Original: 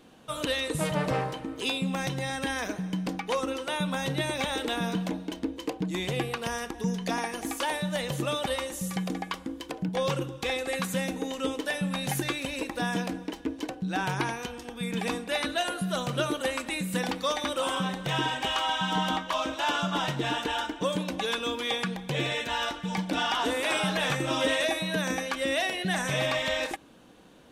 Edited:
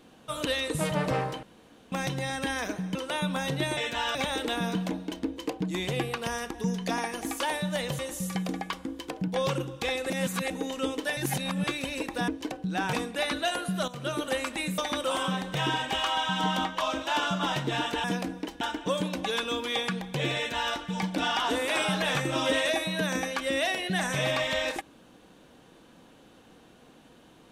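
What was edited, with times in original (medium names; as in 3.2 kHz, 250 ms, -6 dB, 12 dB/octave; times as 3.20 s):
1.43–1.92 s: room tone
2.95–3.53 s: delete
8.19–8.60 s: delete
10.71–11.11 s: reverse
11.78–12.28 s: reverse
12.89–13.46 s: move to 20.56 s
14.11–15.06 s: delete
16.01–16.39 s: fade in, from -13.5 dB
16.91–17.30 s: delete
22.31–22.69 s: copy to 4.35 s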